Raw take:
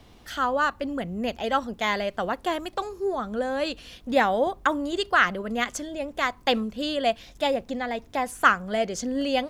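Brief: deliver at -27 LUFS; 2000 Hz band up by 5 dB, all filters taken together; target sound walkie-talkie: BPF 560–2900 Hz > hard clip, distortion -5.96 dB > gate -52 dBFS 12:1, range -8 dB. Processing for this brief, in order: BPF 560–2900 Hz; bell 2000 Hz +7.5 dB; hard clip -18.5 dBFS; gate -52 dBFS 12:1, range -8 dB; gain +1.5 dB

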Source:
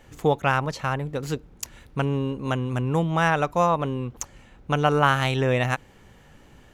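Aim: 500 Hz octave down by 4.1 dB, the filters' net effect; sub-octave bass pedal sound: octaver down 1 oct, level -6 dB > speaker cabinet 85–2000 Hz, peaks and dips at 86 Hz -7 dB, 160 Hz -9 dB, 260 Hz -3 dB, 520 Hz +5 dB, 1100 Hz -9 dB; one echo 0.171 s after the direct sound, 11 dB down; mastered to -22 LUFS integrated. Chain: bell 500 Hz -7.5 dB; echo 0.171 s -11 dB; octaver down 1 oct, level -6 dB; speaker cabinet 85–2000 Hz, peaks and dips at 86 Hz -7 dB, 160 Hz -9 dB, 260 Hz -3 dB, 520 Hz +5 dB, 1100 Hz -9 dB; gain +6.5 dB

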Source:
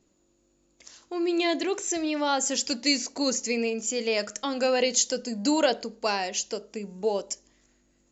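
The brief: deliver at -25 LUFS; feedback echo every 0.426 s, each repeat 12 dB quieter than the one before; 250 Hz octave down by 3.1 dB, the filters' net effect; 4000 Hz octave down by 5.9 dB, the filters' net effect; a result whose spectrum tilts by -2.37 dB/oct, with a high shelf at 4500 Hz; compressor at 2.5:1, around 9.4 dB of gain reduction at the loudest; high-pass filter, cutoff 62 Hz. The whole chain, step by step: HPF 62 Hz; bell 250 Hz -4 dB; bell 4000 Hz -4.5 dB; high shelf 4500 Hz -5 dB; compressor 2.5:1, threshold -34 dBFS; feedback echo 0.426 s, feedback 25%, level -12 dB; gain +10.5 dB

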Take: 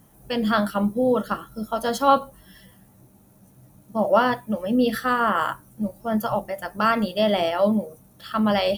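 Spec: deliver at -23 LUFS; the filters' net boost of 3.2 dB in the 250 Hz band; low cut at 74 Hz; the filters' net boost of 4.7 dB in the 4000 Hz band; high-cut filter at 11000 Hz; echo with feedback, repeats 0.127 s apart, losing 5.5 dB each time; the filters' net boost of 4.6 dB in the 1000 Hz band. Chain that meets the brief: HPF 74 Hz; LPF 11000 Hz; bell 250 Hz +3.5 dB; bell 1000 Hz +5.5 dB; bell 4000 Hz +6 dB; feedback echo 0.127 s, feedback 53%, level -5.5 dB; gain -4.5 dB

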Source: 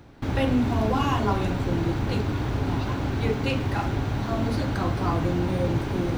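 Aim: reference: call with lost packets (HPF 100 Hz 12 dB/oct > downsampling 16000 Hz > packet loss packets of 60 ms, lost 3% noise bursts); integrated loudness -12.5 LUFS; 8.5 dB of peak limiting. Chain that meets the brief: limiter -20 dBFS; HPF 100 Hz 12 dB/oct; downsampling 16000 Hz; packet loss packets of 60 ms, lost 3% noise bursts; gain +17.5 dB

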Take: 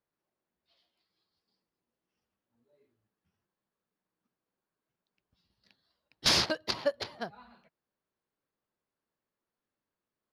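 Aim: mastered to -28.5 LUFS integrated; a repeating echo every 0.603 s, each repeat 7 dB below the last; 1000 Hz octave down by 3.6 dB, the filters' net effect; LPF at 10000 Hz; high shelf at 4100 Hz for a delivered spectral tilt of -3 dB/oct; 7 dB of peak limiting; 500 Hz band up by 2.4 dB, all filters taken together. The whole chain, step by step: LPF 10000 Hz; bell 500 Hz +5 dB; bell 1000 Hz -6 dB; high shelf 4100 Hz -5.5 dB; limiter -22 dBFS; feedback echo 0.603 s, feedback 45%, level -7 dB; gain +8 dB

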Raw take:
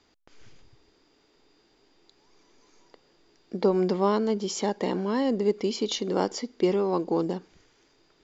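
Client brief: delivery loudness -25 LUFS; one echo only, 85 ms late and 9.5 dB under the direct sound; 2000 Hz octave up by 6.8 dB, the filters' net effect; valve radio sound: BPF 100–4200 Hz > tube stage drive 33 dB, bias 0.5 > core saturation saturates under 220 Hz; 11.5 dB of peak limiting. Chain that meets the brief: bell 2000 Hz +8.5 dB; limiter -21 dBFS; BPF 100–4200 Hz; echo 85 ms -9.5 dB; tube stage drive 33 dB, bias 0.5; core saturation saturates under 220 Hz; gain +14 dB

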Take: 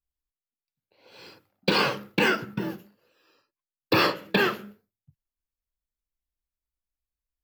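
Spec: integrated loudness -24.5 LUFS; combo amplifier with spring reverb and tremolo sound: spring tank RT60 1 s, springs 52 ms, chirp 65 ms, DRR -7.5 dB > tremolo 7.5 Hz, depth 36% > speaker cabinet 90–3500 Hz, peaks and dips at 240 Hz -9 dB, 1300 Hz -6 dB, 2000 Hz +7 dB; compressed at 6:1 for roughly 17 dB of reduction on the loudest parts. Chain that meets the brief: compressor 6:1, threshold -37 dBFS; spring tank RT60 1 s, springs 52 ms, chirp 65 ms, DRR -7.5 dB; tremolo 7.5 Hz, depth 36%; speaker cabinet 90–3500 Hz, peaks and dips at 240 Hz -9 dB, 1300 Hz -6 dB, 2000 Hz +7 dB; gain +11.5 dB

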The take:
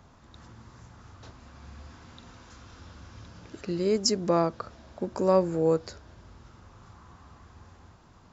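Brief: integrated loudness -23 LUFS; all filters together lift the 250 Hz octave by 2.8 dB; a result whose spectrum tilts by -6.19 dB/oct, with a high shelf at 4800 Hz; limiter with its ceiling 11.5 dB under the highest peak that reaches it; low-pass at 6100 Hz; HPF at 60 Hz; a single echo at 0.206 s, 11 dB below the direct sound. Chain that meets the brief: HPF 60 Hz; LPF 6100 Hz; bell 250 Hz +4.5 dB; high shelf 4800 Hz +4 dB; limiter -19.5 dBFS; echo 0.206 s -11 dB; gain +8 dB

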